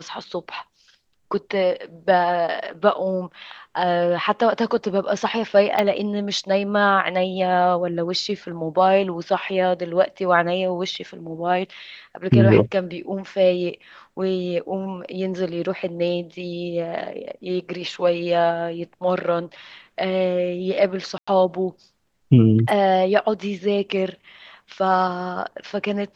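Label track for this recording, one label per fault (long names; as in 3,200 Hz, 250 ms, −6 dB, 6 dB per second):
5.790000	5.790000	click −9 dBFS
21.180000	21.270000	drop-out 95 ms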